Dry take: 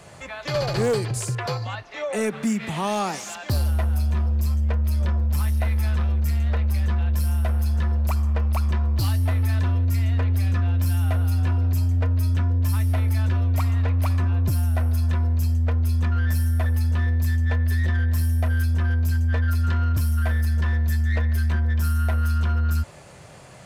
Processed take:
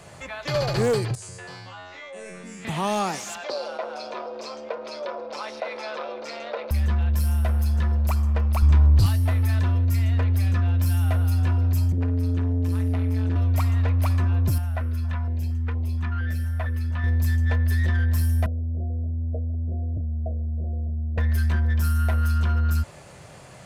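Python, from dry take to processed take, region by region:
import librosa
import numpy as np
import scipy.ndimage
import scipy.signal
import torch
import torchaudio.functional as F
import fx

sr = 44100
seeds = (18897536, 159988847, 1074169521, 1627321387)

y = fx.chain(x, sr, fx.lowpass(hz=9600.0, slope=24),
    fx.comb_fb(f0_hz=91.0, decay_s=0.67, harmonics='all', damping=0.0, mix_pct=100),
    fx.env_flatten(amount_pct=70), at=(1.15, 2.65))
y = fx.chain(y, sr, fx.cabinet(low_hz=400.0, low_slope=24, high_hz=5100.0, hz=(540.0, 1800.0, 3000.0), db=(9, -8, -5)),
    fx.env_flatten(amount_pct=50), at=(3.44, 6.71))
y = fx.chain(y, sr, fx.lower_of_two(delay_ms=0.81),
    fx.lowpass(hz=10000.0, slope=12),
    fx.low_shelf(hz=86.0, db=12.0), at=(8.62, 9.06))
y = fx.chain(y, sr, fx.high_shelf(hz=8900.0, db=-11.0),
    fx.room_flutter(wall_m=9.5, rt60_s=0.28),
    fx.transformer_sat(knee_hz=160.0), at=(11.92, 13.36))
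y = fx.chain(y, sr, fx.bass_treble(bass_db=-5, treble_db=-12),
    fx.filter_held_notch(hz=4.3, low_hz=320.0, high_hz=1500.0), at=(14.58, 17.04))
y = fx.chain(y, sr, fx.steep_lowpass(hz=720.0, slope=96),
    fx.low_shelf(hz=340.0, db=-6.5), at=(18.46, 21.18))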